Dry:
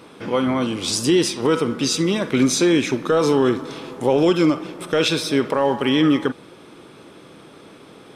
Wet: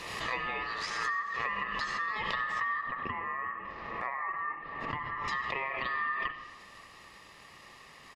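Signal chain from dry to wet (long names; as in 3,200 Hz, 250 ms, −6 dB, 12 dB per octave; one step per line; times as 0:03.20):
low-shelf EQ 410 Hz −10 dB
comb filter 2.9 ms, depth 34%
treble cut that deepens with the level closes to 730 Hz, closed at −18 dBFS
ring modulation 1,500 Hz
downward compressor, threshold −27 dBFS, peak gain reduction 8.5 dB
0:02.81–0:05.28: low-pass filter 1,600 Hz 12 dB per octave
convolution reverb RT60 1.4 s, pre-delay 63 ms, DRR 8.5 dB
background raised ahead of every attack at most 34 dB per second
level −3.5 dB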